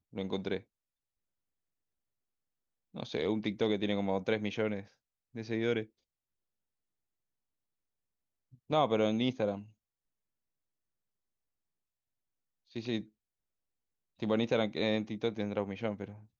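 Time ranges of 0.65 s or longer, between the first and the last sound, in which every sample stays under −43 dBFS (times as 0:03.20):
0:00.59–0:02.95
0:05.84–0:08.70
0:09.62–0:12.76
0:13.02–0:14.22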